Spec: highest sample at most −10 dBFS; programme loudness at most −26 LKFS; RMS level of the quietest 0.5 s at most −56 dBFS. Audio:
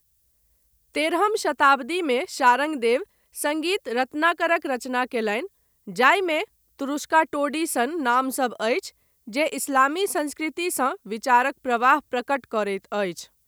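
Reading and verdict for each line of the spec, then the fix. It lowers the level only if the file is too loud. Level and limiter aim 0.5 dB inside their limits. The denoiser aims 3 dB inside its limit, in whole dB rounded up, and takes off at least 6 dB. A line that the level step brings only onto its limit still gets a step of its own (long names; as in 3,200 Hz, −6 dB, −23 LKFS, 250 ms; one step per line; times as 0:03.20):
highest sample −3.5 dBFS: out of spec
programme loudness −23.0 LKFS: out of spec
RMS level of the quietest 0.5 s −66 dBFS: in spec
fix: level −3.5 dB
brickwall limiter −10.5 dBFS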